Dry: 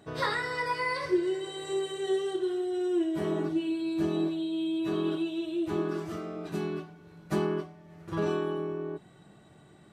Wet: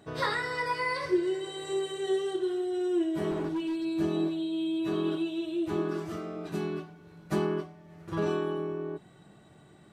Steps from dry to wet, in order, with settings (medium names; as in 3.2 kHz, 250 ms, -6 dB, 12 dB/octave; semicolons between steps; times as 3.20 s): 3.31–3.85 s: hard clipper -28 dBFS, distortion -23 dB